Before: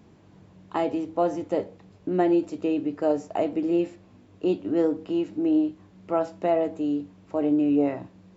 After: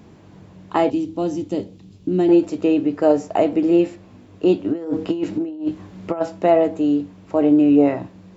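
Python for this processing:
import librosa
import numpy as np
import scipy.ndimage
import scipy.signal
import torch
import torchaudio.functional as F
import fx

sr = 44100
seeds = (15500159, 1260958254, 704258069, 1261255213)

y = fx.band_shelf(x, sr, hz=1000.0, db=-12.5, octaves=2.6, at=(0.9, 2.29))
y = fx.over_compress(y, sr, threshold_db=-28.0, ratio=-0.5, at=(4.72, 6.2), fade=0.02)
y = F.gain(torch.from_numpy(y), 8.0).numpy()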